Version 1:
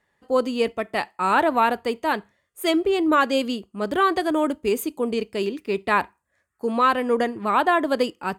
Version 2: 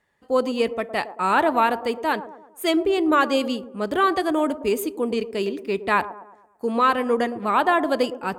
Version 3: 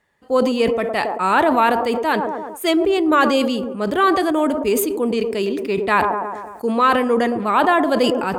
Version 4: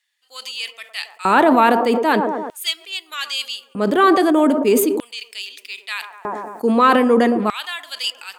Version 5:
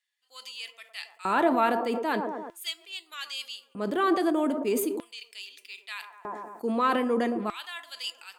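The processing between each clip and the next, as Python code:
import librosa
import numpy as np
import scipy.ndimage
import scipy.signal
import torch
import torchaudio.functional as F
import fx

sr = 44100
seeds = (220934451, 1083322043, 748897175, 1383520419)

y1 = fx.echo_wet_bandpass(x, sr, ms=112, feedback_pct=45, hz=500.0, wet_db=-11.5)
y2 = fx.sustainer(y1, sr, db_per_s=38.0)
y2 = y2 * 10.0 ** (3.0 / 20.0)
y3 = fx.filter_lfo_highpass(y2, sr, shape='square', hz=0.4, low_hz=220.0, high_hz=3300.0, q=1.4)
y3 = y3 * 10.0 ** (1.5 / 20.0)
y4 = fx.comb_fb(y3, sr, f0_hz=340.0, decay_s=0.24, harmonics='all', damping=0.0, mix_pct=60)
y4 = y4 * 10.0 ** (-4.5 / 20.0)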